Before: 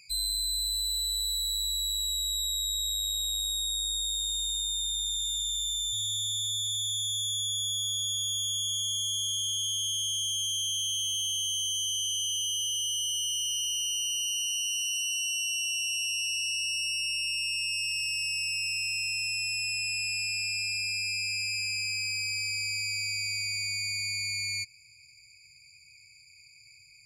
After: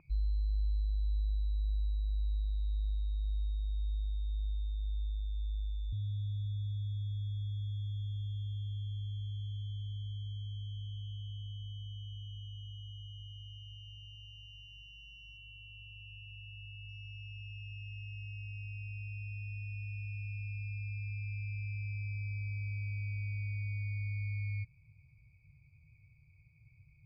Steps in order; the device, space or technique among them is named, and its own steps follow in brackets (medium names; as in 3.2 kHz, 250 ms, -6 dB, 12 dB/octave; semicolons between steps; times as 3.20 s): under water (low-pass 1.1 kHz 24 dB/octave; peaking EQ 320 Hz +8 dB 0.51 oct); 15.37–16.89 s: band-stop 5.6 kHz, Q 6.4; trim +12.5 dB